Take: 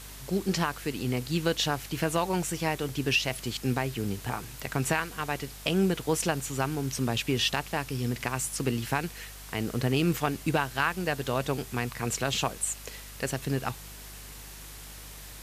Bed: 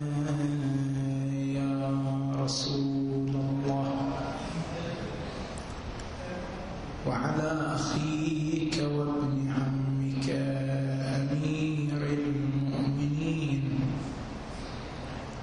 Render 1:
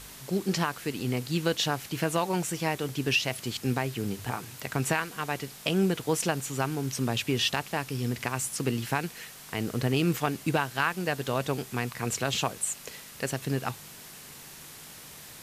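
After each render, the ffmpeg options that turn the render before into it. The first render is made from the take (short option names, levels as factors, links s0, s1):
-af "bandreject=f=50:t=h:w=4,bandreject=f=100:t=h:w=4"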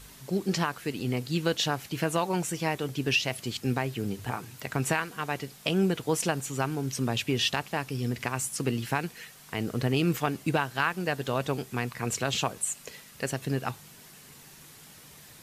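-af "afftdn=nr=6:nf=-47"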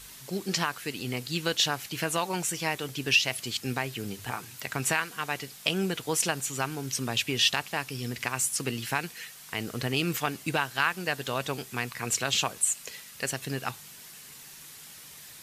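-af "tiltshelf=f=1100:g=-5"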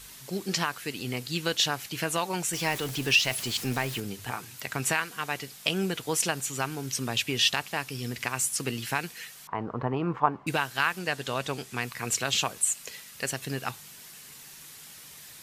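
-filter_complex "[0:a]asettb=1/sr,asplit=3[s0][s1][s2];[s0]atrim=end=2.534[s3];[s1]atrim=start=2.53:end=4,asetpts=PTS-STARTPTS,afade=t=in:d=0.004:c=qsin,afade=t=out:st=1.466:d=0.004:c=qsin,aeval=exprs='val(0)+0.5*0.0188*sgn(val(0))':c=same[s4];[s2]atrim=start=3.996[s5];[s3][s4]acrossfade=d=0.004:c1=hsin:c2=qsin[s6];[s6][s5]acrossfade=d=0.004:c1=qsin:c2=hsin,asettb=1/sr,asplit=3[s7][s8][s9];[s7]atrim=end=9.474[s10];[s8]atrim=start=9.47:end=10.47,asetpts=PTS-STARTPTS,afade=t=in:d=0.004:c=qsin,afade=t=out:st=0.996:d=0.004:c=qsin,lowpass=f=1000:t=q:w=4.8[s11];[s9]atrim=start=10.466[s12];[s10][s11]acrossfade=d=0.004:c1=hsin:c2=qsin[s13];[s13][s12]acrossfade=d=0.004:c1=qsin:c2=hsin,asettb=1/sr,asplit=3[s14][s15][s16];[s14]atrim=end=10.994[s17];[s15]atrim=start=10.99:end=11.82,asetpts=PTS-STARTPTS,afade=t=in:d=0.004:c=qsin,afade=t=out:st=0.826:d=0.004:c=qsin,lowpass=11000[s18];[s16]atrim=start=11.816[s19];[s17][s18]acrossfade=d=0.004:c1=hsin:c2=qsin[s20];[s20][s19]acrossfade=d=0.004:c1=qsin:c2=hsin"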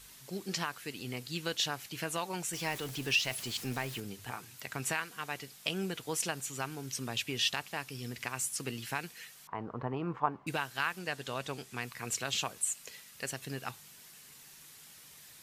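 -af "volume=0.447"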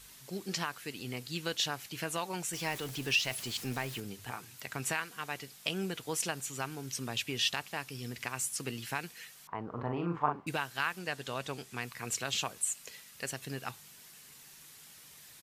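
-filter_complex "[0:a]asplit=3[s0][s1][s2];[s0]afade=t=out:st=9.71:d=0.02[s3];[s1]asplit=2[s4][s5];[s5]adelay=41,volume=0.596[s6];[s4][s6]amix=inputs=2:normalize=0,afade=t=in:st=9.71:d=0.02,afade=t=out:st=10.44:d=0.02[s7];[s2]afade=t=in:st=10.44:d=0.02[s8];[s3][s7][s8]amix=inputs=3:normalize=0"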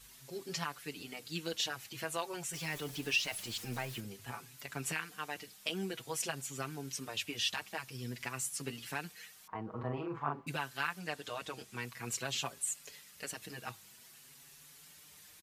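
-filter_complex "[0:a]asplit=2[s0][s1];[s1]adelay=5.7,afreqshift=0.5[s2];[s0][s2]amix=inputs=2:normalize=1"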